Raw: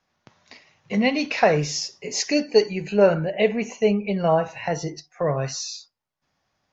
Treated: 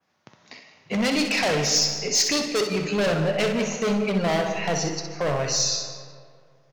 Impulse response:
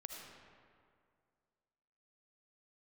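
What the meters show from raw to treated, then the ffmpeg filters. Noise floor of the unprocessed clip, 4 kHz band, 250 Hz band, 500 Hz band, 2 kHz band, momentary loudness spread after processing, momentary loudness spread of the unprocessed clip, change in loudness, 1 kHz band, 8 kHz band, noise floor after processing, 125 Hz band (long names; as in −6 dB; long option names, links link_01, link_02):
−76 dBFS, +6.0 dB, −1.0 dB, −4.0 dB, +1.0 dB, 8 LU, 9 LU, −0.5 dB, −2.5 dB, can't be measured, −59 dBFS, −1.0 dB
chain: -filter_complex "[0:a]highpass=110,aecho=1:1:178:0.0841,volume=23.5dB,asoftclip=hard,volume=-23.5dB,adynamicequalizer=threshold=0.00708:dfrequency=5500:dqfactor=0.72:tfrequency=5500:tqfactor=0.72:attack=5:release=100:ratio=0.375:range=3:mode=boostabove:tftype=bell,asplit=2[link_01][link_02];[1:a]atrim=start_sample=2205,adelay=63[link_03];[link_02][link_03]afir=irnorm=-1:irlink=0,volume=-2dB[link_04];[link_01][link_04]amix=inputs=2:normalize=0,volume=2dB"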